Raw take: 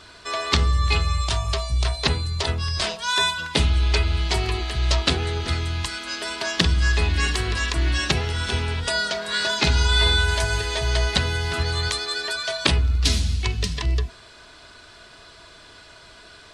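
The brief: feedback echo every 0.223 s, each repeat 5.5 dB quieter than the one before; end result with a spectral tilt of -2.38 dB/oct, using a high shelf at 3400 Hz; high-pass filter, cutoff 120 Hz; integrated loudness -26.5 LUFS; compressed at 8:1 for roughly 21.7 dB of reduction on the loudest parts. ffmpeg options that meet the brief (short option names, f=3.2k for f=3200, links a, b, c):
-af "highpass=120,highshelf=f=3.4k:g=3.5,acompressor=threshold=-37dB:ratio=8,aecho=1:1:223|446|669|892|1115|1338|1561:0.531|0.281|0.149|0.079|0.0419|0.0222|0.0118,volume=11dB"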